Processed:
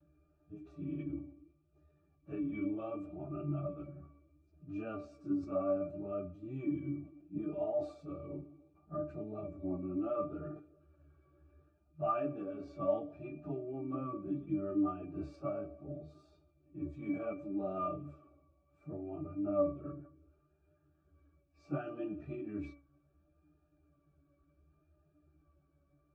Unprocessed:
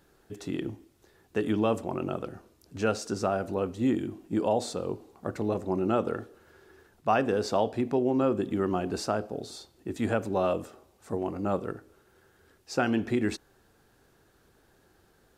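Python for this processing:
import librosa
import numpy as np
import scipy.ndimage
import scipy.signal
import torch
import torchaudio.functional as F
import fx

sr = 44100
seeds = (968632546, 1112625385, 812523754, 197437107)

y = fx.stretch_vocoder_free(x, sr, factor=1.7)
y = fx.octave_resonator(y, sr, note='D', decay_s=0.25)
y = fx.vibrato(y, sr, rate_hz=0.69, depth_cents=41.0)
y = fx.sustainer(y, sr, db_per_s=150.0)
y = F.gain(torch.from_numpy(y), 8.0).numpy()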